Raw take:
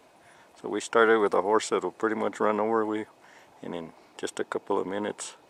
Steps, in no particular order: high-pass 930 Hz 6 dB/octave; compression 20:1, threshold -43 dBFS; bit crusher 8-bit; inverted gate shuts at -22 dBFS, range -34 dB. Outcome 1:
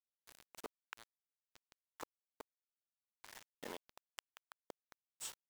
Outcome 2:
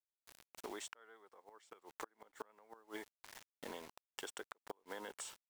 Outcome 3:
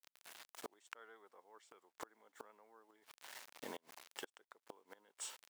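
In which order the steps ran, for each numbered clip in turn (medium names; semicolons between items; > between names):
inverted gate > high-pass > compression > bit crusher; high-pass > bit crusher > inverted gate > compression; bit crusher > inverted gate > high-pass > compression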